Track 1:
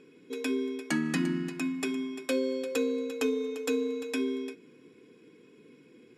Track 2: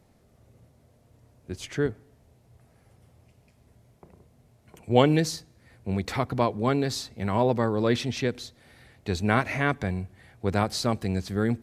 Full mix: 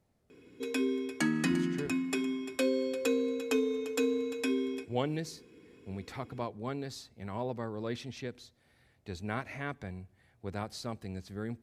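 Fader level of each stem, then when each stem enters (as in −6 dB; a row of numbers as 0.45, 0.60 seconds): −0.5, −13.0 decibels; 0.30, 0.00 seconds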